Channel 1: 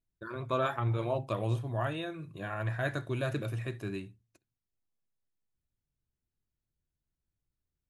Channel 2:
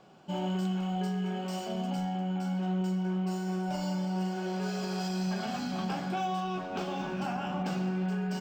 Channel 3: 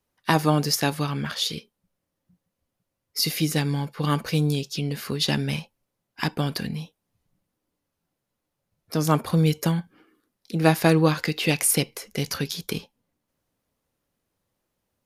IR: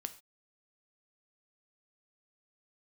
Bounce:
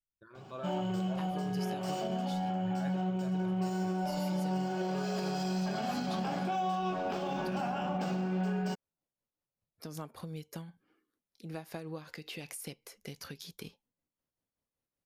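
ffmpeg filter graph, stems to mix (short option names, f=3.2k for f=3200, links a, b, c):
-filter_complex "[0:a]volume=-16dB,asplit=3[a][b][c];[b]volume=-5.5dB[d];[1:a]adelay=350,volume=2.5dB,asplit=2[e][f];[f]volume=-11.5dB[g];[2:a]adelay=900,volume=-13dB[h];[c]apad=whole_len=385996[i];[e][i]sidechaincompress=threshold=-53dB:ratio=3:attack=16:release=156[j];[a][h]amix=inputs=2:normalize=0,tremolo=f=5.2:d=0.48,acompressor=threshold=-40dB:ratio=5,volume=0dB[k];[3:a]atrim=start_sample=2205[l];[d][g]amix=inputs=2:normalize=0[m];[m][l]afir=irnorm=-1:irlink=0[n];[j][k][n]amix=inputs=3:normalize=0,adynamicequalizer=threshold=0.00501:dfrequency=590:dqfactor=1.2:tfrequency=590:tqfactor=1.2:attack=5:release=100:ratio=0.375:range=2.5:mode=boostabove:tftype=bell,alimiter=level_in=2dB:limit=-24dB:level=0:latency=1:release=166,volume=-2dB"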